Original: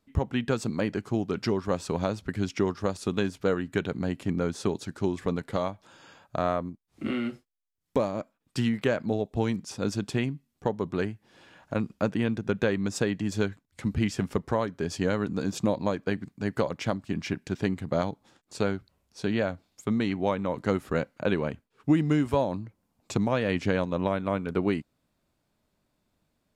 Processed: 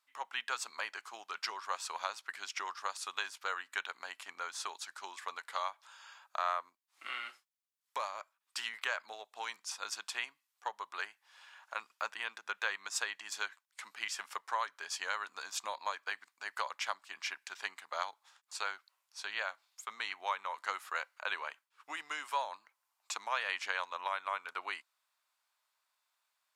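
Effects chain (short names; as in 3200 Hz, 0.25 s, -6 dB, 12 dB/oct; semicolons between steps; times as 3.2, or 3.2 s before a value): Chebyshev high-pass 1000 Hz, order 3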